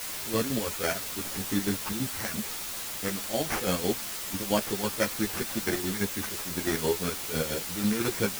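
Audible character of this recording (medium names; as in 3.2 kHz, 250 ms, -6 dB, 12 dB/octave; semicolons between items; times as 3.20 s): aliases and images of a low sample rate 3.8 kHz, jitter 0%; chopped level 6 Hz, depth 65%, duty 50%; a quantiser's noise floor 6-bit, dither triangular; a shimmering, thickened sound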